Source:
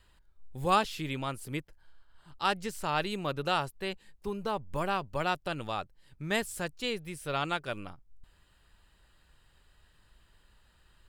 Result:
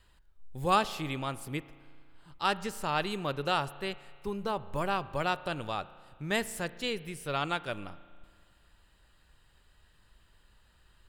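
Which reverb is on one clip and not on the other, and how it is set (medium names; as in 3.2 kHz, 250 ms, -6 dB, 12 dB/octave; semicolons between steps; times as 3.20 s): spring tank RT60 2 s, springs 35 ms, chirp 35 ms, DRR 16.5 dB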